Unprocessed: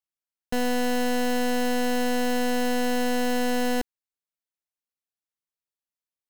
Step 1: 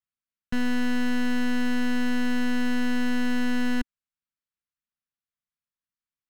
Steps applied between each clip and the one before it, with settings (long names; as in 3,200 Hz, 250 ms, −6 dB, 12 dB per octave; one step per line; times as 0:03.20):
low-pass filter 1,600 Hz 6 dB per octave
flat-topped bell 530 Hz −15 dB
level +3.5 dB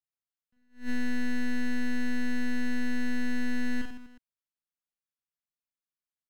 reverse bouncing-ball delay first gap 40 ms, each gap 1.3×, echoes 5
level that may rise only so fast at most 200 dB per second
level −8.5 dB